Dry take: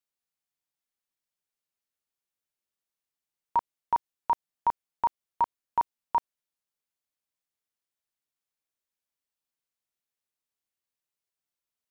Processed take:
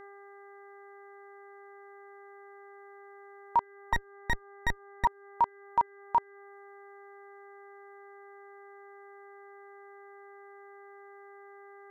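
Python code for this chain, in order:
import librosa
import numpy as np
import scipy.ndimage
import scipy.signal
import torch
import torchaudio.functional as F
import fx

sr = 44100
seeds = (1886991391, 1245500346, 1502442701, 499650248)

y = fx.lower_of_two(x, sr, delay_ms=0.45, at=(3.93, 5.05))
y = fx.dmg_buzz(y, sr, base_hz=400.0, harmonics=5, level_db=-49.0, tilt_db=-4, odd_only=False)
y = fx.dereverb_blind(y, sr, rt60_s=0.64)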